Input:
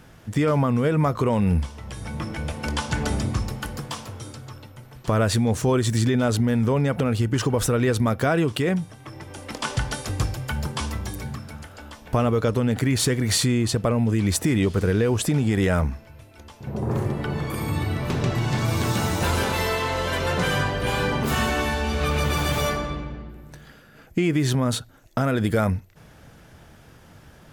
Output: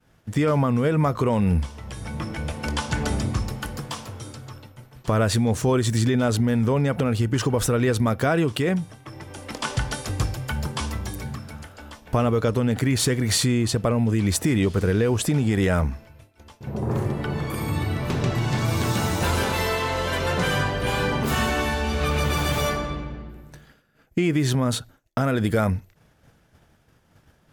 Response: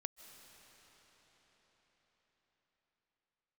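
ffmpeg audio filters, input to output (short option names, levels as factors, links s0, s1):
-af "agate=range=0.0224:threshold=0.01:ratio=3:detection=peak"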